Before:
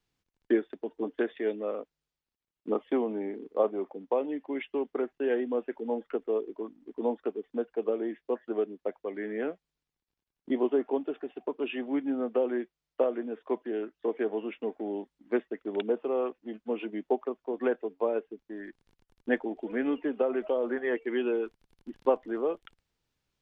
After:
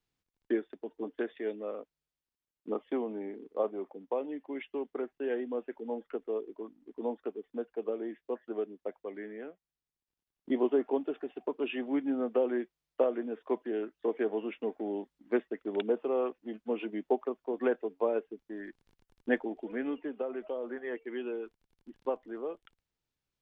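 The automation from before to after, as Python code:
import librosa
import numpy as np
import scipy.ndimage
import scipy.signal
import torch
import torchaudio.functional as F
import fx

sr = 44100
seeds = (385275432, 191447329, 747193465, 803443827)

y = fx.gain(x, sr, db=fx.line((9.16, -5.0), (9.51, -13.0), (10.55, -1.0), (19.3, -1.0), (20.21, -8.0)))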